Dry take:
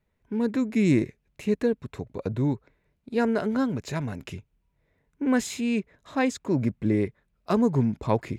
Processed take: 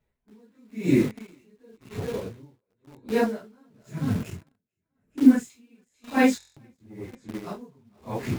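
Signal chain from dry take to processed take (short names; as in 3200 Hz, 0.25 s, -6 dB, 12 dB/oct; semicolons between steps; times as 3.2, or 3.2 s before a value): phase scrambler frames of 0.1 s; 3.79–5.5 graphic EQ 125/250/500/1000/4000/8000 Hz +5/+6/-4/-8/-9/+4 dB; on a send: thinning echo 0.442 s, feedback 24%, high-pass 280 Hz, level -11.5 dB; 6.64–7.06 on the sum: sample leveller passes 1; in parallel at -3.5 dB: bit-crush 6-bit; on the sum: stuck buffer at 6.38, samples 1024, times 7; dB-linear tremolo 0.96 Hz, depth 37 dB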